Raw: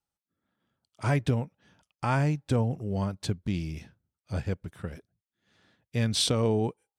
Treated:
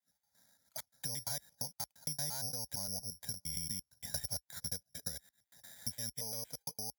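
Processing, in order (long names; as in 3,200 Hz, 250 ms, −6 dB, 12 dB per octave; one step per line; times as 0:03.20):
slices reordered back to front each 115 ms, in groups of 3
high-pass filter 57 Hz 24 dB per octave
parametric band 97 Hz −7.5 dB 2.5 octaves
brickwall limiter −25 dBFS, peak gain reduction 11 dB
downward compressor 4 to 1, threshold −52 dBFS, peak gain reduction 17.5 dB
phaser with its sweep stopped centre 1,800 Hz, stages 8
bad sample-rate conversion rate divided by 8×, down filtered, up zero stuff
level +7 dB
AAC 192 kbit/s 48,000 Hz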